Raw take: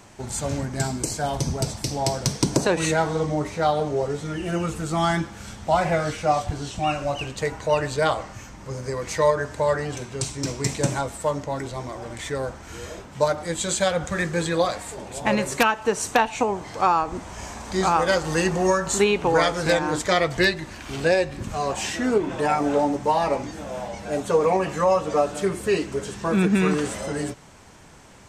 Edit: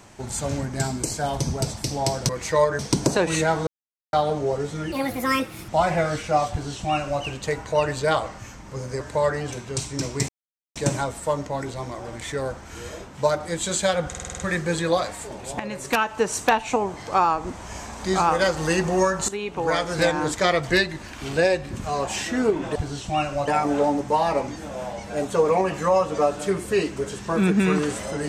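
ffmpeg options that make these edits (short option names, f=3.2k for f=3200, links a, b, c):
-filter_complex "[0:a]asplit=19[a][b][c][d][e][f][g][h][i][j][k][l][m][n][o][p][q][r][s];[a]atrim=end=2.292[t];[b]atrim=start=8.948:end=9.452[u];[c]atrim=start=2.288:end=3.17,asetpts=PTS-STARTPTS,afade=t=out:st=0.878:d=0.004:c=hsin[v];[d]atrim=start=3.17:end=3.63,asetpts=PTS-STARTPTS,volume=0[w];[e]atrim=start=3.63:end=4.424,asetpts=PTS-STARTPTS,afade=t=in:d=0.004:c=hsin[x];[f]atrim=start=4.42:end=5.63,asetpts=PTS-STARTPTS,asetrate=69678,aresample=44100[y];[g]atrim=start=5.626:end=8.952[z];[h]atrim=start=9.448:end=10.73,asetpts=PTS-STARTPTS,afade=t=out:st=1.278:d=0.004:c=hsin,apad=pad_dur=0.47[aa];[i]atrim=start=10.73:end=14.112,asetpts=PTS-STARTPTS,afade=t=in:d=0.004:c=hsin[ab];[j]atrim=start=14.058:end=14.112[ac];[k]atrim=start=14.058:end=14.112[ad];[l]atrim=start=14.058:end=14.112[ae];[m]atrim=start=14.058:end=14.112[af];[n]atrim=start=14.058:end=14.112[ag];[o]atrim=start=14.058:end=15.27,asetpts=PTS-STARTPTS,afade=t=out:st=1.208:d=0.004:c=hsin:silence=0.188365[ah];[p]atrim=start=15.27:end=18.96,asetpts=PTS-STARTPTS,afade=t=in:d=0.53:silence=0.188365,afade=t=out:st=3.686:d=0.004:c=hsin:silence=0.177828[ai];[q]atrim=start=18.96:end=22.432,asetpts=PTS-STARTPTS,afade=t=in:d=0.74:silence=0.177828[aj];[r]atrim=start=6.448:end=7.172[ak];[s]atrim=start=22.428[al];[t][u]acrossfade=d=0.004:c1=hsin:c2=hsin[am];[v][w][x]concat=n=3:v=0:a=1[an];[am][an]acrossfade=d=0.004:c1=hsin:c2=hsin[ao];[ao][y]acrossfade=d=0.004:c1=hsin:c2=hsin[ap];[ap][z]acrossfade=d=0.004:c1=hsin:c2=hsin[aq];[aa][ab]concat=n=2:v=0:a=1[ar];[aq][ar]acrossfade=d=0.004:c1=hsin:c2=hsin[as];[as][ac]acrossfade=d=0.004:c1=hsin:c2=hsin[at];[at][ad]acrossfade=d=0.004:c1=hsin:c2=hsin[au];[au][ae]acrossfade=d=0.004:c1=hsin:c2=hsin[av];[av][af]acrossfade=d=0.004:c1=hsin:c2=hsin[aw];[aw][ag]acrossfade=d=0.004:c1=hsin:c2=hsin[ax];[ah][ai][aj]concat=n=3:v=0:a=1[ay];[ax][ay]acrossfade=d=0.004:c1=hsin:c2=hsin[az];[az][ak]acrossfade=d=0.004:c1=hsin:c2=hsin[ba];[ba][al]acrossfade=d=0.004:c1=hsin:c2=hsin"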